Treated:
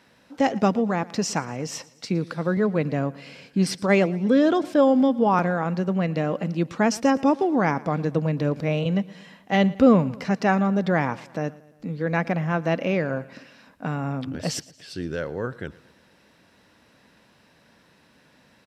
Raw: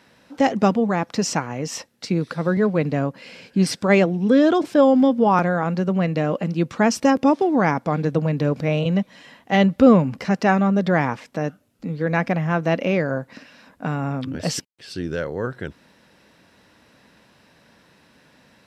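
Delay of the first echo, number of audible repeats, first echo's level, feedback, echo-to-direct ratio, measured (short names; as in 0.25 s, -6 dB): 0.115 s, 3, -21.0 dB, 53%, -19.5 dB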